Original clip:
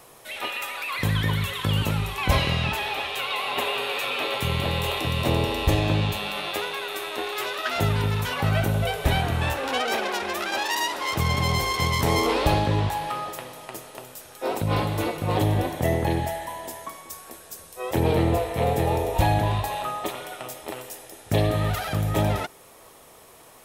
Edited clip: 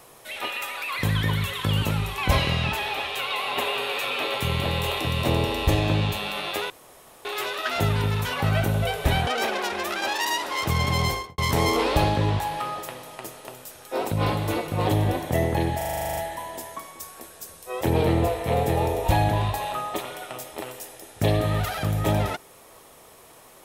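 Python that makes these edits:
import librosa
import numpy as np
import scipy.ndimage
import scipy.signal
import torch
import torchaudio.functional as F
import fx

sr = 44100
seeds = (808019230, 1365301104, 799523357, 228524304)

y = fx.studio_fade_out(x, sr, start_s=11.57, length_s=0.31)
y = fx.edit(y, sr, fx.room_tone_fill(start_s=6.7, length_s=0.55),
    fx.cut(start_s=9.27, length_s=0.5),
    fx.stutter(start_s=16.27, slice_s=0.04, count=11), tone=tone)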